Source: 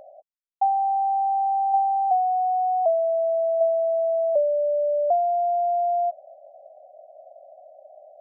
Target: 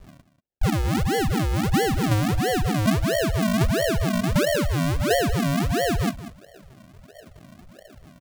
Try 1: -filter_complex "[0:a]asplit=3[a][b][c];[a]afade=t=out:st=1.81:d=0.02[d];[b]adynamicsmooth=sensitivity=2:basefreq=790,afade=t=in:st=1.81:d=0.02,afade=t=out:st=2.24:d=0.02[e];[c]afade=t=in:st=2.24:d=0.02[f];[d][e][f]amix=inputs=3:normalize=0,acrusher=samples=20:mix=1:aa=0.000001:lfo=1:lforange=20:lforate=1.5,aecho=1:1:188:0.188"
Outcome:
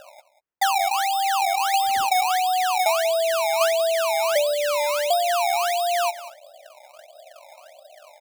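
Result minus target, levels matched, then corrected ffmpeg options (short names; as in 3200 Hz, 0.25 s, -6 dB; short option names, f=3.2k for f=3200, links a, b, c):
decimation with a swept rate: distortion -24 dB
-filter_complex "[0:a]asplit=3[a][b][c];[a]afade=t=out:st=1.81:d=0.02[d];[b]adynamicsmooth=sensitivity=2:basefreq=790,afade=t=in:st=1.81:d=0.02,afade=t=out:st=2.24:d=0.02[e];[c]afade=t=in:st=2.24:d=0.02[f];[d][e][f]amix=inputs=3:normalize=0,acrusher=samples=70:mix=1:aa=0.000001:lfo=1:lforange=70:lforate=1.5,aecho=1:1:188:0.188"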